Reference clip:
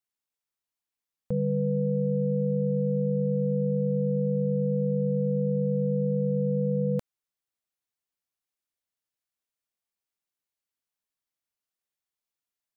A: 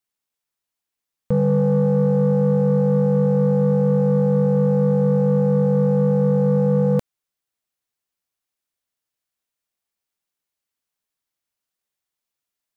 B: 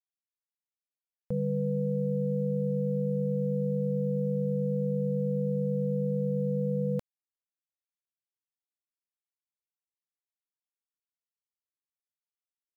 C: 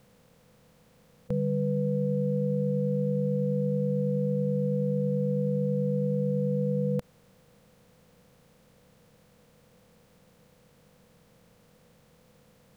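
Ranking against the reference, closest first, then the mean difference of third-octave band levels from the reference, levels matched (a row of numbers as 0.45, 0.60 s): B, C, A; 1.0, 3.0, 8.5 dB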